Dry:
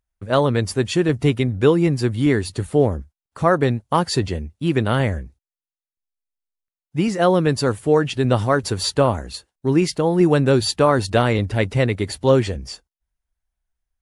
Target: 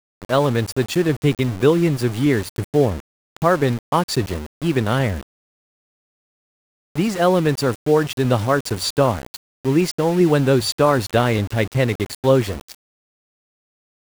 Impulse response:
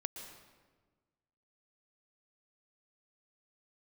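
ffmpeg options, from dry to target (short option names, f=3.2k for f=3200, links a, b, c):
-af "aeval=exprs='val(0)*gte(abs(val(0)),0.0473)':c=same"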